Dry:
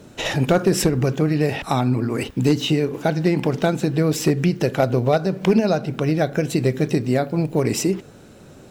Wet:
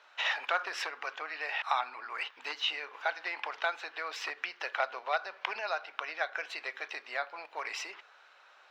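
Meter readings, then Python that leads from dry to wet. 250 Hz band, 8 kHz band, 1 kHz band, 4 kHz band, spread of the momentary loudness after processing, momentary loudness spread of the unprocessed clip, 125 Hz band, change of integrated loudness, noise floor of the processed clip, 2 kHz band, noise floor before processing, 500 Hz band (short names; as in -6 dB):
under -40 dB, -20.5 dB, -7.0 dB, -7.0 dB, 7 LU, 4 LU, under -40 dB, -14.5 dB, -60 dBFS, -2.5 dB, -45 dBFS, -21.0 dB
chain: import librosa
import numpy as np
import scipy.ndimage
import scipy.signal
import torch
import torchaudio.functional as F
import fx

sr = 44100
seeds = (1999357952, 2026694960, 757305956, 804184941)

y = scipy.signal.sosfilt(scipy.signal.butter(4, 970.0, 'highpass', fs=sr, output='sos'), x)
y = fx.air_absorb(y, sr, metres=270.0)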